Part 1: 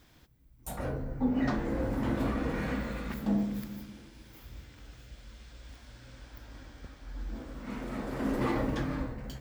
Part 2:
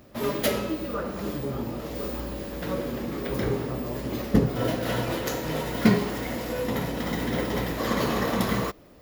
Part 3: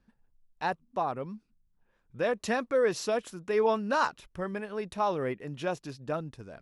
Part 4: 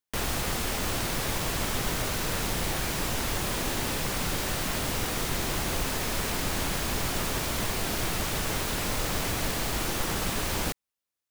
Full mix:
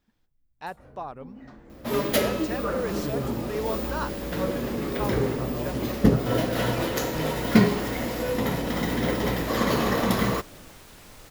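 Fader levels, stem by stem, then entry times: -17.0 dB, +2.0 dB, -5.5 dB, -18.5 dB; 0.00 s, 1.70 s, 0.00 s, 2.20 s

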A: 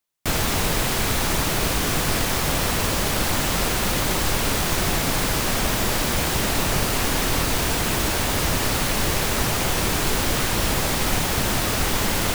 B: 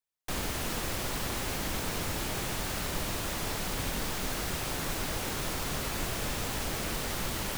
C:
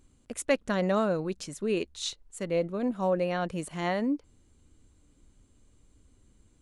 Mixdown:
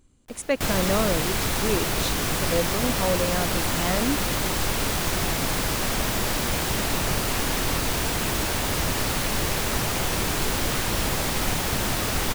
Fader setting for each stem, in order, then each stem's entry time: -3.0 dB, -12.5 dB, +1.5 dB; 0.35 s, 0.00 s, 0.00 s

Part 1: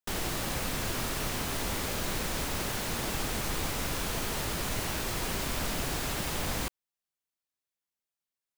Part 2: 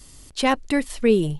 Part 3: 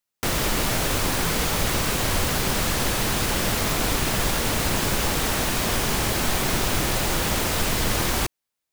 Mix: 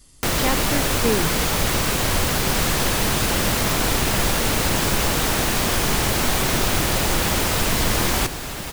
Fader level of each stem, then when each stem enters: +2.5 dB, -5.0 dB, +2.5 dB; 2.40 s, 0.00 s, 0.00 s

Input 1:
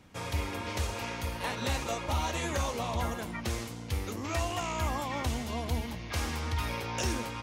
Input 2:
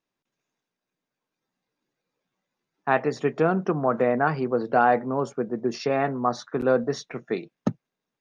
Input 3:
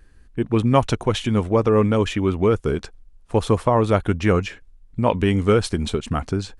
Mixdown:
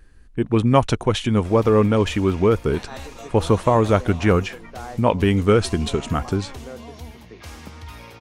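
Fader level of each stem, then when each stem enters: -6.0 dB, -17.0 dB, +1.0 dB; 1.30 s, 0.00 s, 0.00 s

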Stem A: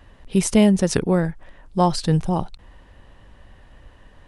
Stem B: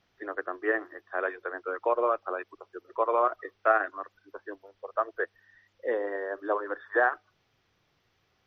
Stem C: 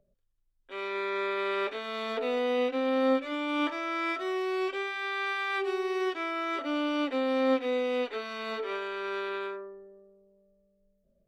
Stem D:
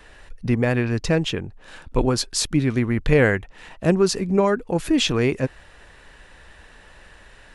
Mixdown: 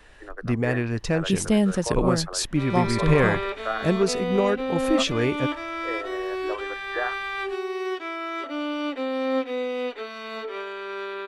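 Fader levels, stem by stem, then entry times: -5.5 dB, -5.0 dB, +1.0 dB, -4.0 dB; 0.95 s, 0.00 s, 1.85 s, 0.00 s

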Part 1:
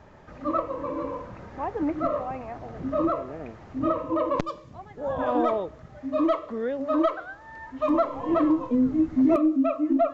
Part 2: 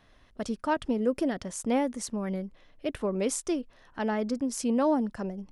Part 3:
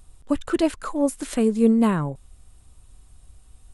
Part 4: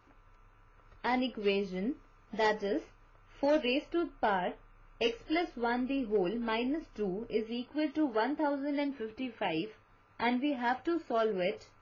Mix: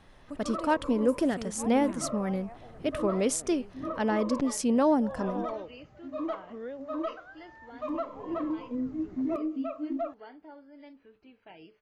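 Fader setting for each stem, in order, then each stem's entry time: -10.5 dB, +1.5 dB, -19.0 dB, -17.5 dB; 0.00 s, 0.00 s, 0.00 s, 2.05 s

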